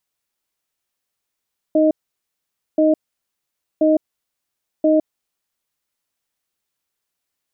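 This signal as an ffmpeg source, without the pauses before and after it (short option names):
-f lavfi -i "aevalsrc='0.2*(sin(2*PI*311*t)+sin(2*PI*623*t))*clip(min(mod(t,1.03),0.16-mod(t,1.03))/0.005,0,1)':d=3.96:s=44100"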